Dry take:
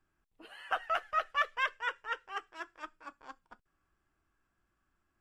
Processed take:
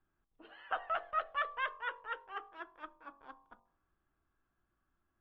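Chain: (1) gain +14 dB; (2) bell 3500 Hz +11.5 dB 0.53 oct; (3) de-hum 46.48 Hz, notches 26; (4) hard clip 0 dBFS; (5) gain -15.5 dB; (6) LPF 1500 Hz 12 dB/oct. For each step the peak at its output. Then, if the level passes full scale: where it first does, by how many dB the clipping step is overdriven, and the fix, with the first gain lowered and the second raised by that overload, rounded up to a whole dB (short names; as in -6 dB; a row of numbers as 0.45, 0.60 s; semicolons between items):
-4.0, -1.5, -2.0, -2.0, -17.5, -22.5 dBFS; no overload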